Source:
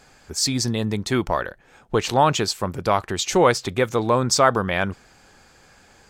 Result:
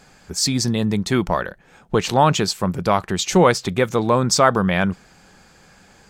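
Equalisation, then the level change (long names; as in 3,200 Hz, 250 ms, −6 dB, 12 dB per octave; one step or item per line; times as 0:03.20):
parametric band 180 Hz +9 dB 0.43 octaves
+1.5 dB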